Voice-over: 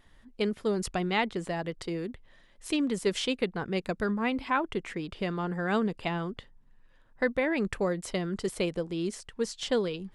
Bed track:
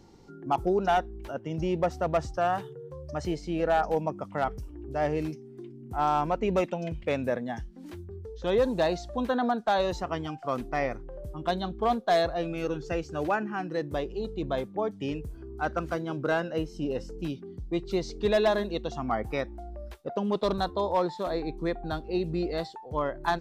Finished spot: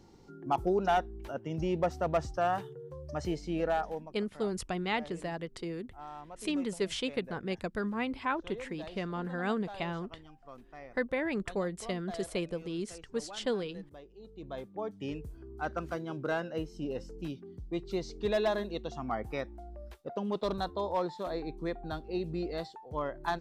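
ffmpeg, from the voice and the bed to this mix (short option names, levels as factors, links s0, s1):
-filter_complex "[0:a]adelay=3750,volume=0.596[s0];[1:a]volume=3.76,afade=t=out:st=3.57:d=0.53:silence=0.141254,afade=t=in:st=14.17:d=0.91:silence=0.188365[s1];[s0][s1]amix=inputs=2:normalize=0"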